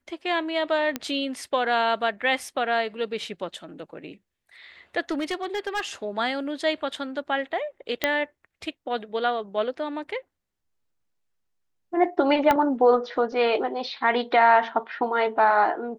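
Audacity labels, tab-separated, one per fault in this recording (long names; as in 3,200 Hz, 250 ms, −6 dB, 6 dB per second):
0.960000	0.960000	click −12 dBFS
5.110000	5.810000	clipping −23 dBFS
8.040000	8.040000	click −7 dBFS
12.510000	12.510000	click −8 dBFS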